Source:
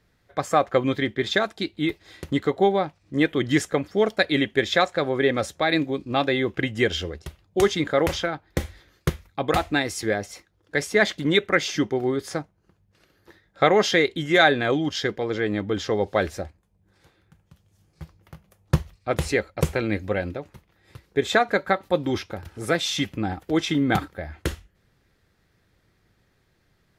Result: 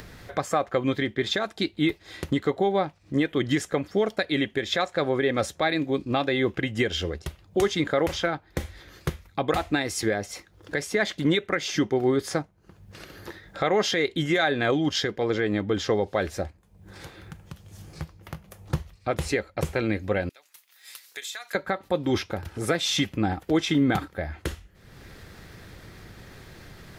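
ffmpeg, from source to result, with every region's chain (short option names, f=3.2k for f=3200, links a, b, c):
-filter_complex "[0:a]asettb=1/sr,asplit=3[a][b][c];[a]atrim=end=20.294[d];[b]atrim=start=20.29:end=21.55,asetpts=PTS-STARTPTS,afade=t=in:d=0.004:c=qsin,afade=t=out:st=1.256:d=0.004:c=qsin,highpass=f=1.1k:p=1,aderivative,acompressor=threshold=-39dB:ratio=4:attack=3.2:release=140:knee=1:detection=peak[e];[c]atrim=start=21.546[f];[d][e]acrossfade=d=0.004:c1=hsin:c2=qsin[g];[g][f]acrossfade=d=0.004:c1=qsin:c2=hsin,alimiter=limit=-15.5dB:level=0:latency=1:release=247,acompressor=mode=upward:threshold=-32dB:ratio=2.5,volume=2.5dB"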